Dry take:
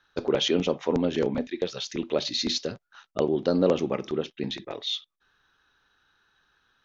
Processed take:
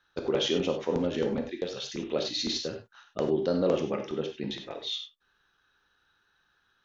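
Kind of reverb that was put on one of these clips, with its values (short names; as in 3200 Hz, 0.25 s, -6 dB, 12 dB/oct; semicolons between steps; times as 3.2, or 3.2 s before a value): non-linear reverb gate 0.12 s flat, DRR 4 dB; gain -4.5 dB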